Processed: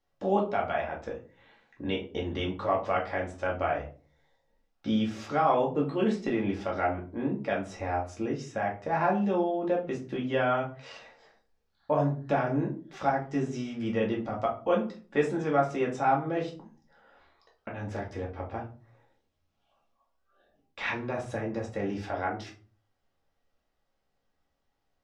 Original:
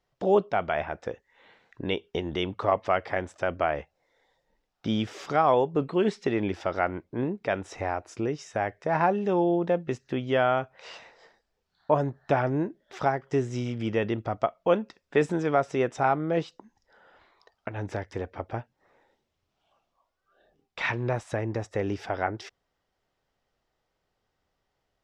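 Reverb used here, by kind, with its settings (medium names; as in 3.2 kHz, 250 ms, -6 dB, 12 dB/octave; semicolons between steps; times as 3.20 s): simulated room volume 200 m³, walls furnished, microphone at 2.3 m; trim -7 dB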